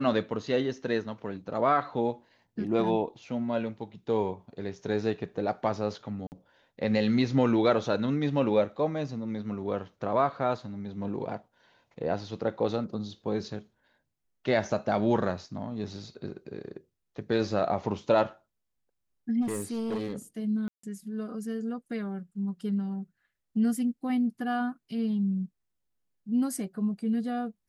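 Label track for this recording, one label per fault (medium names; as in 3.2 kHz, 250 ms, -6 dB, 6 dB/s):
6.270000	6.320000	dropout 49 ms
19.410000	20.130000	clipped -27.5 dBFS
20.680000	20.830000	dropout 154 ms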